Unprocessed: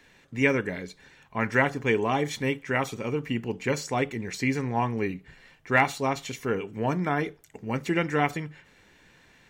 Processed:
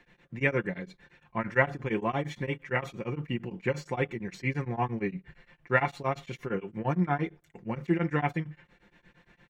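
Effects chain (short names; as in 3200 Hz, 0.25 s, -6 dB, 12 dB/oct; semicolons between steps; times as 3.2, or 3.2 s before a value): tone controls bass +3 dB, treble -13 dB; comb 5.7 ms, depth 58%; beating tremolo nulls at 8.7 Hz; gain -2 dB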